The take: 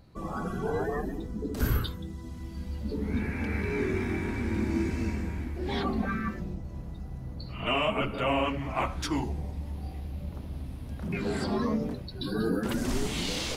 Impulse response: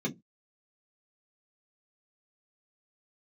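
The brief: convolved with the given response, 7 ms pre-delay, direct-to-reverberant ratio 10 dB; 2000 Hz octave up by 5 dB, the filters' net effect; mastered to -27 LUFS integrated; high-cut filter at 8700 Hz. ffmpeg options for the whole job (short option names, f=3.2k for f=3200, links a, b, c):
-filter_complex "[0:a]lowpass=8.7k,equalizer=f=2k:t=o:g=6.5,asplit=2[a][b];[1:a]atrim=start_sample=2205,adelay=7[c];[b][c]afir=irnorm=-1:irlink=0,volume=-15dB[d];[a][d]amix=inputs=2:normalize=0,volume=2dB"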